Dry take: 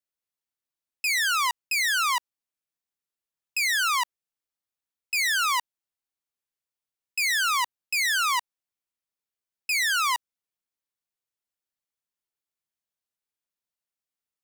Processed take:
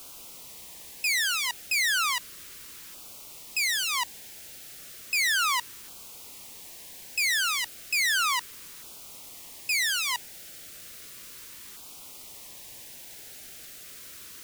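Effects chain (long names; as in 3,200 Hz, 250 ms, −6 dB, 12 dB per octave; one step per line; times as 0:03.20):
background noise white −45 dBFS
auto-filter notch saw down 0.34 Hz 660–1,900 Hz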